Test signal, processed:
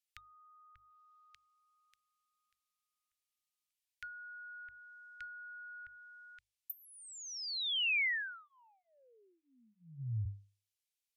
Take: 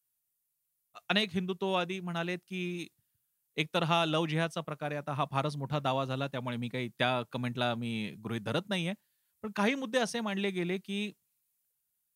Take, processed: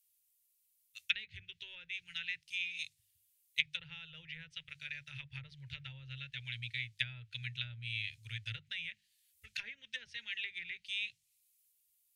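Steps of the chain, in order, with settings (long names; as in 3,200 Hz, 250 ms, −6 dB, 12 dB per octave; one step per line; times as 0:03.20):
treble cut that deepens with the level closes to 910 Hz, closed at −26 dBFS
inverse Chebyshev band-stop filter 180–1,200 Hz, stop band 40 dB
low-shelf EQ 180 Hz −4.5 dB
mains-hum notches 50/100/150/200 Hz
level +6 dB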